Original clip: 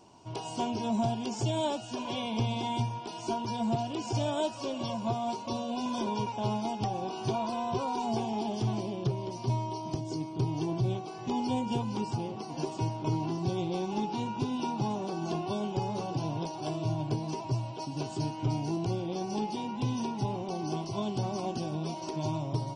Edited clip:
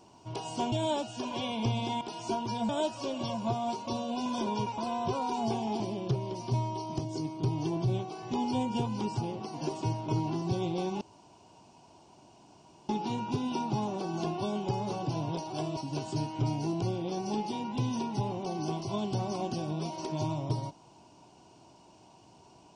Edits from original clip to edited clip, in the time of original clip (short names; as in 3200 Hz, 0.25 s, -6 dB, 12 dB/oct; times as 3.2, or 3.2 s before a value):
0.72–1.46 cut
2.75–3 cut
3.68–4.29 cut
6.38–7.44 cut
8.46–8.76 cut
13.97 insert room tone 1.88 s
16.85–17.81 cut